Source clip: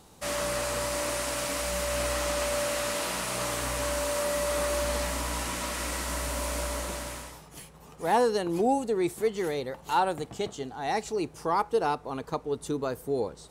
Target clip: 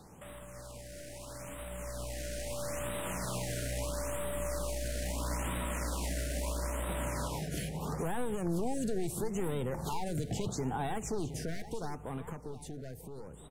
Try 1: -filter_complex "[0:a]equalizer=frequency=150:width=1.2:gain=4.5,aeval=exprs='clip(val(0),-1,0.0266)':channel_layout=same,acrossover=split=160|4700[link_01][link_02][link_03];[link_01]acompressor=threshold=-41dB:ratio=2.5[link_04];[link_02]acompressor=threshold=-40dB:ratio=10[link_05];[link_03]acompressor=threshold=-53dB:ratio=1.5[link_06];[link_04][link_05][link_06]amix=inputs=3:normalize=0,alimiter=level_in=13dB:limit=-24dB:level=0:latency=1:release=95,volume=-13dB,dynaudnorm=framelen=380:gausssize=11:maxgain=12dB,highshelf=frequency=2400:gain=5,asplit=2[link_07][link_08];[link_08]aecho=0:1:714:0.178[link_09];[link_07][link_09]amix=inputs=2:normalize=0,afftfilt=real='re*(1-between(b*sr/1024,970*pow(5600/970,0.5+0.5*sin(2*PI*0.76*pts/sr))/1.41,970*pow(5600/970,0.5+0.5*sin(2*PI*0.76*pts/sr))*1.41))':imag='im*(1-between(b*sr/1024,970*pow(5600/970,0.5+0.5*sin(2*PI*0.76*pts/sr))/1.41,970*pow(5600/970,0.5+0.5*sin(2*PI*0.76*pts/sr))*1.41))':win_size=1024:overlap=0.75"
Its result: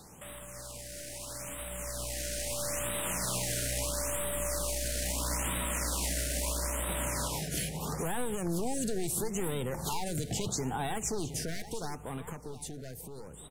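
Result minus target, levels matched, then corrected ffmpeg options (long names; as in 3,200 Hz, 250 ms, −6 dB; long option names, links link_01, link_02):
4,000 Hz band +3.5 dB
-filter_complex "[0:a]equalizer=frequency=150:width=1.2:gain=4.5,aeval=exprs='clip(val(0),-1,0.0266)':channel_layout=same,acrossover=split=160|4700[link_01][link_02][link_03];[link_01]acompressor=threshold=-41dB:ratio=2.5[link_04];[link_02]acompressor=threshold=-40dB:ratio=10[link_05];[link_03]acompressor=threshold=-53dB:ratio=1.5[link_06];[link_04][link_05][link_06]amix=inputs=3:normalize=0,alimiter=level_in=13dB:limit=-24dB:level=0:latency=1:release=95,volume=-13dB,dynaudnorm=framelen=380:gausssize=11:maxgain=12dB,highshelf=frequency=2400:gain=-4.5,asplit=2[link_07][link_08];[link_08]aecho=0:1:714:0.178[link_09];[link_07][link_09]amix=inputs=2:normalize=0,afftfilt=real='re*(1-between(b*sr/1024,970*pow(5600/970,0.5+0.5*sin(2*PI*0.76*pts/sr))/1.41,970*pow(5600/970,0.5+0.5*sin(2*PI*0.76*pts/sr))*1.41))':imag='im*(1-between(b*sr/1024,970*pow(5600/970,0.5+0.5*sin(2*PI*0.76*pts/sr))/1.41,970*pow(5600/970,0.5+0.5*sin(2*PI*0.76*pts/sr))*1.41))':win_size=1024:overlap=0.75"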